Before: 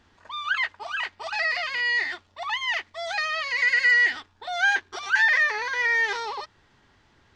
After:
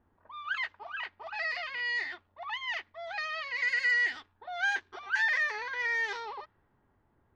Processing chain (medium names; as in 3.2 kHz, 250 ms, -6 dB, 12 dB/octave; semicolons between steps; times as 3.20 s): level-controlled noise filter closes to 1 kHz, open at -18.5 dBFS; trim -8 dB